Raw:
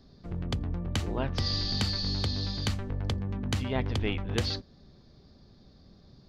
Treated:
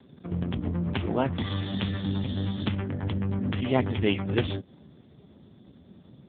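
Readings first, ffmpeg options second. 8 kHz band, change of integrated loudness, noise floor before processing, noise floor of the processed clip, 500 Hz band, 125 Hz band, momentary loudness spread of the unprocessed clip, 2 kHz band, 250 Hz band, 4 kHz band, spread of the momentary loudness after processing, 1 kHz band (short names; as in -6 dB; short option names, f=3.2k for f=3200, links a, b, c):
under -35 dB, +2.0 dB, -57 dBFS, -55 dBFS, +6.0 dB, +2.0 dB, 5 LU, +2.5 dB, +6.5 dB, -5.0 dB, 5 LU, +4.5 dB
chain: -af "highshelf=f=2.1k:g=3,volume=7.5dB" -ar 8000 -c:a libopencore_amrnb -b:a 4750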